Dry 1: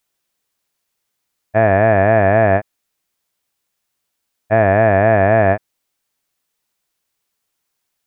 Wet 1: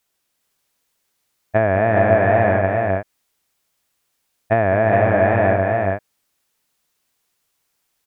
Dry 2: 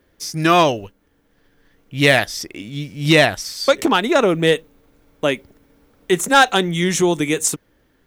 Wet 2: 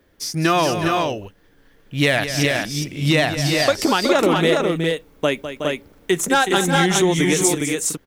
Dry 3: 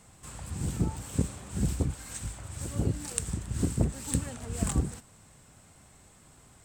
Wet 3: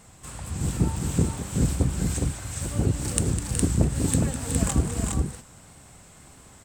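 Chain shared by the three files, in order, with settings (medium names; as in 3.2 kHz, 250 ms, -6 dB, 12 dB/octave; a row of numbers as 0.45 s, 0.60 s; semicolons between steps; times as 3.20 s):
compression 5:1, threshold -15 dBFS; wow and flutter 38 cents; multi-tap echo 204/370/412 ms -11/-9/-3.5 dB; peak normalisation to -2 dBFS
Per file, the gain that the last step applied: +1.5 dB, +1.0 dB, +5.0 dB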